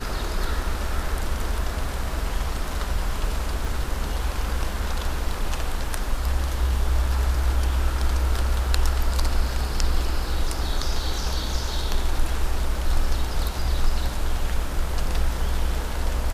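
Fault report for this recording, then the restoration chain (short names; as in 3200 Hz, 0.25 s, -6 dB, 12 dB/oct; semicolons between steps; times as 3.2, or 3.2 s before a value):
3.65 gap 2.1 ms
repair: interpolate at 3.65, 2.1 ms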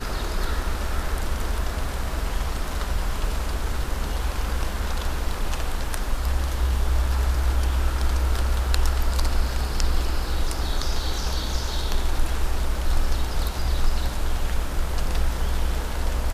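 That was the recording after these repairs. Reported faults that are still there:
none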